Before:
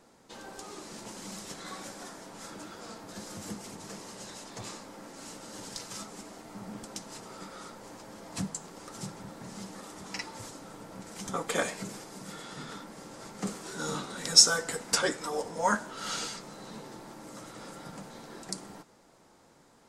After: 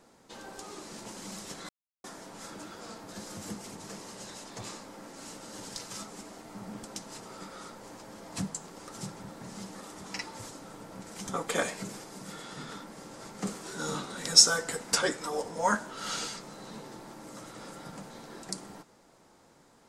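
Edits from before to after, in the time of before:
0:01.69–0:02.04: silence

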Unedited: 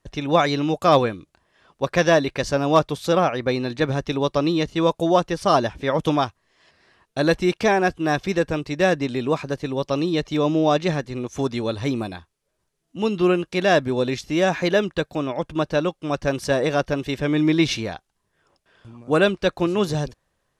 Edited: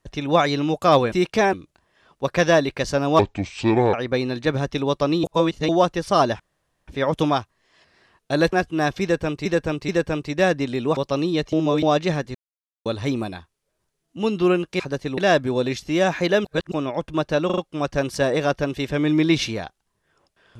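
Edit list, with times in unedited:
0:02.78–0:03.28: play speed 67%
0:04.58–0:05.03: reverse
0:05.74: splice in room tone 0.48 s
0:07.39–0:07.80: move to 0:01.12
0:08.30–0:08.73: repeat, 3 plays
0:09.38–0:09.76: move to 0:13.59
0:10.32–0:10.62: reverse
0:11.14–0:11.65: silence
0:14.86–0:15.13: reverse
0:15.87: stutter 0.04 s, 4 plays

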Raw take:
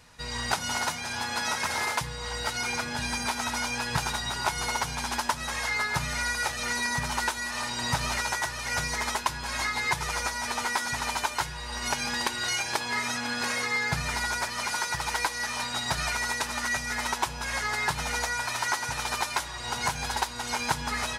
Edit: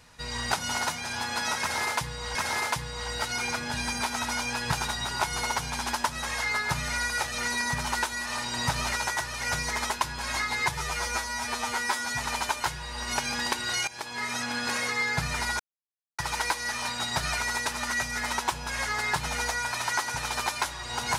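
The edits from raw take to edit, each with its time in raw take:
0:01.60–0:02.35: repeat, 2 plays
0:09.97–0:10.98: time-stretch 1.5×
0:12.62–0:13.18: fade in, from −14 dB
0:14.34–0:14.93: silence

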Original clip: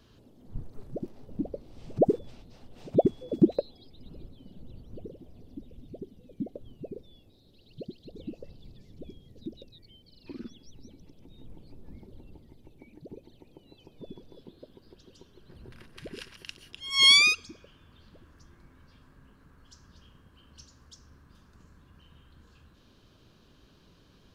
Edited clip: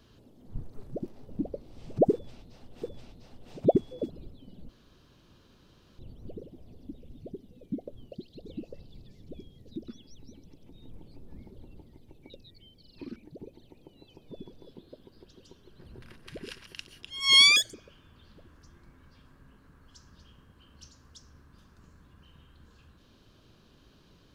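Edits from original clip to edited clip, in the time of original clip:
0:02.12–0:02.82: repeat, 2 plays
0:03.40–0:04.08: remove
0:04.67: splice in room tone 1.30 s
0:06.80–0:07.82: remove
0:09.58–0:10.44: move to 0:12.86
0:17.26–0:17.51: play speed 136%

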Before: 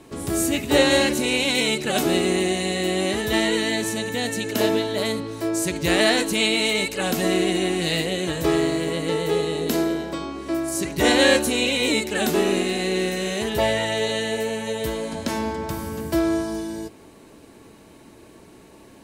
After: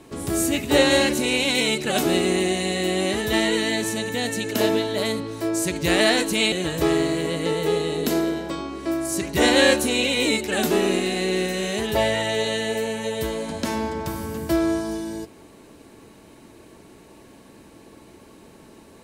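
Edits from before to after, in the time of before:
0:06.52–0:08.15: remove

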